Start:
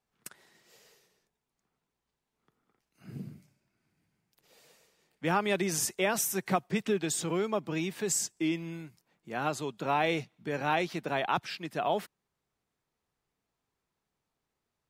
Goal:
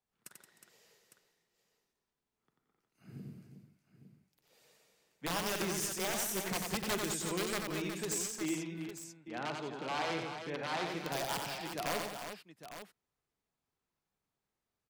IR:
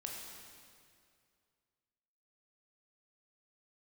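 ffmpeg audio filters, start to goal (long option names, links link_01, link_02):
-filter_complex "[0:a]aeval=exprs='(mod(11.9*val(0)+1,2)-1)/11.9':channel_layout=same,asettb=1/sr,asplit=3[link_01][link_02][link_03];[link_01]atrim=end=8.424[link_04];[link_02]atrim=start=8.42:end=10.85,asetpts=PTS-STARTPTS,afade=type=in:duration=0.004:curve=qsin,afade=type=out:start_time=2.426:duration=0.004:curve=qsin,highpass=120,lowpass=3900[link_05];[link_03]atrim=start=10.846[link_06];[link_04][link_05]acrossfade=duration=0.004:curve1=hsin:curve2=qsin[link_07];[link_07][link_06]acrossfade=duration=0.004:curve1=qsin:curve2=hsin,aecho=1:1:46|91|174|307|364|856:0.141|0.596|0.299|0.106|0.376|0.266,volume=-7dB"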